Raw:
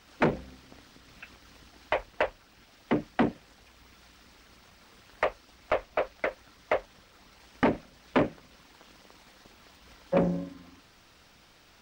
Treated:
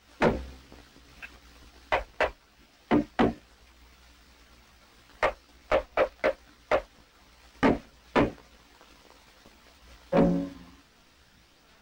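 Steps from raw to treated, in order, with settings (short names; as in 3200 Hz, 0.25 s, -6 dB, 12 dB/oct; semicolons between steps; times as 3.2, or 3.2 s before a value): sample leveller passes 1; chorus voices 6, 0.69 Hz, delay 16 ms, depth 2.3 ms; gain +2.5 dB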